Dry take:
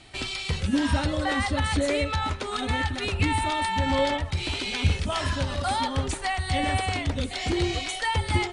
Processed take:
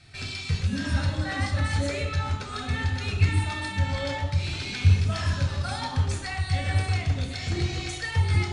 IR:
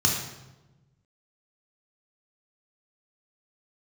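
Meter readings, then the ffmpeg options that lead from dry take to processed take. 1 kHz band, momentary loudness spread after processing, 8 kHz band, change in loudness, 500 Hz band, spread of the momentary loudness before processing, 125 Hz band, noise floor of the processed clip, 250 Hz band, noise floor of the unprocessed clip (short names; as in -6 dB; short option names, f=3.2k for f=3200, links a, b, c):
-7.5 dB, 6 LU, -3.5 dB, -0.5 dB, -6.5 dB, 4 LU, +5.0 dB, -36 dBFS, -5.5 dB, -35 dBFS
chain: -filter_complex "[0:a]asplit=2[a][b];[1:a]atrim=start_sample=2205[c];[b][c]afir=irnorm=-1:irlink=0,volume=-12dB[d];[a][d]amix=inputs=2:normalize=0,volume=-6.5dB"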